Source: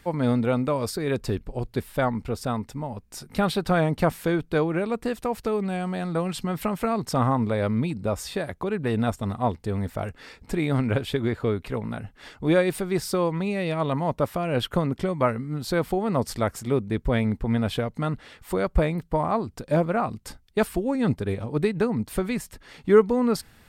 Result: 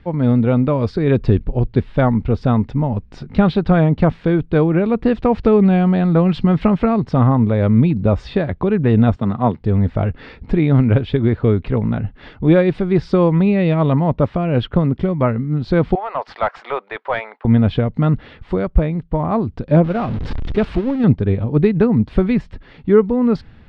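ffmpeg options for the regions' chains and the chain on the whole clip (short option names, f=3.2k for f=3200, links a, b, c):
-filter_complex "[0:a]asettb=1/sr,asplit=3[a][b][c];[a]atrim=end=9.164[d];[b]atrim=start=9.16:end=9.61,asetpts=PTS-STARTPTS,afade=t=in:d=0.004:c=qsin,afade=t=out:st=0.446:d=0.004:c=qsin,highpass=f=120:w=0.5412,highpass=f=120:w=1.3066,equalizer=f=1.3k:w=1.5:g=4.5[e];[c]atrim=start=9.606[f];[d][e]acrossfade=d=0.004:c1=hsin:c2=qsin[g];[g][f]acrossfade=d=0.004:c1=qsin:c2=hsin,asettb=1/sr,asplit=3[h][i][j];[h]atrim=end=15.954[k];[i]atrim=start=15.95:end=17.45,asetpts=PTS-STARTPTS,afade=t=in:d=0.004:c=qsin,afade=t=out:st=1.496:d=0.004:c=qsin,highpass=f=710:w=0.5412,highpass=f=710:w=1.3066,asplit=2[l][m];[m]highpass=f=720:p=1,volume=13dB,asoftclip=type=tanh:threshold=-15dB[n];[l][n]amix=inputs=2:normalize=0,lowpass=f=1k:p=1,volume=-6dB[o];[j]atrim=start=17.446[p];[k][o]acrossfade=d=0.004:c1=hsin:c2=qsin[q];[q][p]acrossfade=d=0.004:c1=qsin:c2=hsin,asettb=1/sr,asplit=3[r][s][t];[r]atrim=end=19.844[u];[s]atrim=start=19.84:end=21.04,asetpts=PTS-STARTPTS,afade=t=in:d=0.004:c=qsin,afade=t=out:st=1.196:d=0.004:c=qsin,aeval=exprs='val(0)+0.5*0.0631*sgn(val(0))':c=same,agate=range=-8dB:threshold=-22dB:ratio=16:release=100:detection=peak,acompressor=threshold=-24dB:ratio=4:attack=3.2:release=140:knee=1:detection=peak[v];[t]atrim=start=21.036[w];[u][v]acrossfade=d=0.004:c1=hsin:c2=qsin[x];[x][w]acrossfade=d=0.004:c1=qsin:c2=hsin,lowpass=f=3.8k:w=0.5412,lowpass=f=3.8k:w=1.3066,lowshelf=f=380:g=11.5,dynaudnorm=f=160:g=5:m=11.5dB,volume=-1dB"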